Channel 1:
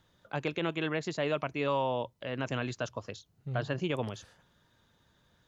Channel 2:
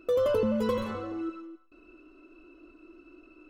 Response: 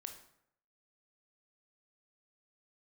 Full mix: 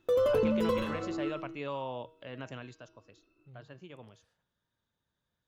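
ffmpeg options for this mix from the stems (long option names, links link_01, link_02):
-filter_complex "[0:a]volume=-7dB,afade=type=out:start_time=2.35:duration=0.51:silence=0.316228[link_01];[1:a]agate=range=-15dB:threshold=-47dB:ratio=16:detection=peak,volume=-1dB[link_02];[link_01][link_02]amix=inputs=2:normalize=0,bandreject=frequency=158.4:width_type=h:width=4,bandreject=frequency=316.8:width_type=h:width=4,bandreject=frequency=475.2:width_type=h:width=4,bandreject=frequency=633.6:width_type=h:width=4,bandreject=frequency=792:width_type=h:width=4,bandreject=frequency=950.4:width_type=h:width=4,bandreject=frequency=1108.8:width_type=h:width=4,bandreject=frequency=1267.2:width_type=h:width=4,bandreject=frequency=1425.6:width_type=h:width=4,bandreject=frequency=1584:width_type=h:width=4,bandreject=frequency=1742.4:width_type=h:width=4,bandreject=frequency=1900.8:width_type=h:width=4,bandreject=frequency=2059.2:width_type=h:width=4,bandreject=frequency=2217.6:width_type=h:width=4,bandreject=frequency=2376:width_type=h:width=4,bandreject=frequency=2534.4:width_type=h:width=4,bandreject=frequency=2692.8:width_type=h:width=4,bandreject=frequency=2851.2:width_type=h:width=4,bandreject=frequency=3009.6:width_type=h:width=4,bandreject=frequency=3168:width_type=h:width=4,bandreject=frequency=3326.4:width_type=h:width=4,bandreject=frequency=3484.8:width_type=h:width=4,bandreject=frequency=3643.2:width_type=h:width=4,bandreject=frequency=3801.6:width_type=h:width=4,bandreject=frequency=3960:width_type=h:width=4,bandreject=frequency=4118.4:width_type=h:width=4,bandreject=frequency=4276.8:width_type=h:width=4,bandreject=frequency=4435.2:width_type=h:width=4,bandreject=frequency=4593.6:width_type=h:width=4,bandreject=frequency=4752:width_type=h:width=4,bandreject=frequency=4910.4:width_type=h:width=4,bandreject=frequency=5068.8:width_type=h:width=4,bandreject=frequency=5227.2:width_type=h:width=4,bandreject=frequency=5385.6:width_type=h:width=4,bandreject=frequency=5544:width_type=h:width=4,bandreject=frequency=5702.4:width_type=h:width=4,bandreject=frequency=5860.8:width_type=h:width=4,bandreject=frequency=6019.2:width_type=h:width=4"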